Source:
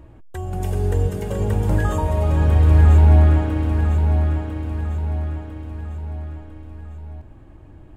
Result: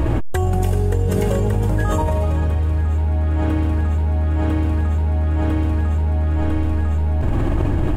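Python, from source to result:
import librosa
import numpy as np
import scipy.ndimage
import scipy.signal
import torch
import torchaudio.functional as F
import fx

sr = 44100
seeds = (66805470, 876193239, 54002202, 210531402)

y = fx.env_flatten(x, sr, amount_pct=100)
y = F.gain(torch.from_numpy(y), -8.5).numpy()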